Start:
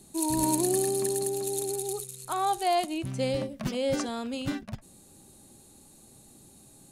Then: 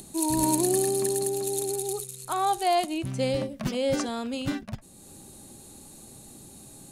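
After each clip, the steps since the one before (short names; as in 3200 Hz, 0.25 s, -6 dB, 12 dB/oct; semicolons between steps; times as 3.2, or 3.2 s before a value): upward compressor, threshold -42 dBFS; gain +2 dB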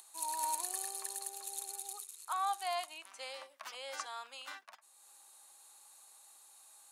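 ladder high-pass 840 Hz, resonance 40%; gain -1.5 dB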